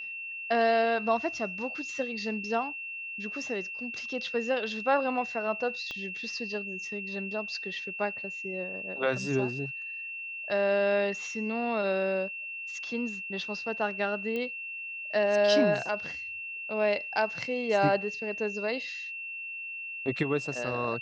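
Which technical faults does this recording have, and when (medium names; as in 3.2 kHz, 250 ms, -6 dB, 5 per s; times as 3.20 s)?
whine 2.7 kHz -36 dBFS
5.91 s: pop -24 dBFS
14.36 s: pop -22 dBFS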